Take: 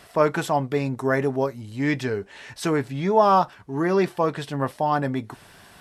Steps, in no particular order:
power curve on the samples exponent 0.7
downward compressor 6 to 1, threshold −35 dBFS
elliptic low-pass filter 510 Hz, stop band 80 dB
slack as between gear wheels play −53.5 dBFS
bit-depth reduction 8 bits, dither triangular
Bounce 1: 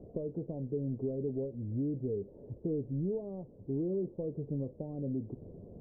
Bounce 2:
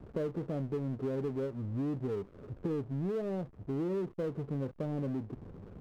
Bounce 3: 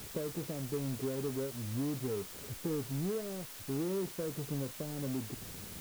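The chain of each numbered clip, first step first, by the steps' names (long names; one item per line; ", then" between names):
downward compressor, then bit-depth reduction, then power curve on the samples, then slack as between gear wheels, then elliptic low-pass filter
bit-depth reduction, then elliptic low-pass filter, then downward compressor, then slack as between gear wheels, then power curve on the samples
downward compressor, then elliptic low-pass filter, then slack as between gear wheels, then power curve on the samples, then bit-depth reduction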